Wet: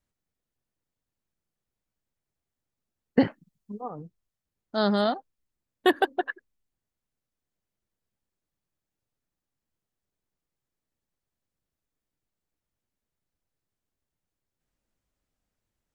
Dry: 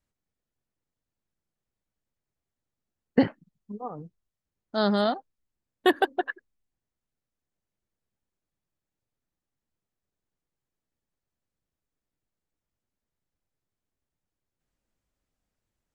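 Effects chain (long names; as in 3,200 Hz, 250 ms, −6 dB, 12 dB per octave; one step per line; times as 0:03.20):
0:03.25–0:03.81: high-shelf EQ 4,800 Hz +6 dB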